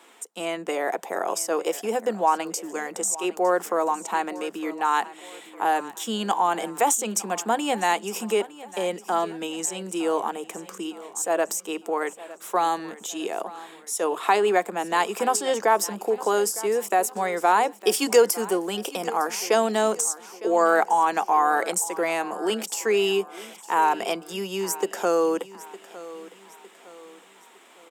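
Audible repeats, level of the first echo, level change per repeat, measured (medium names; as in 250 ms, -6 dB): 3, -17.5 dB, -7.5 dB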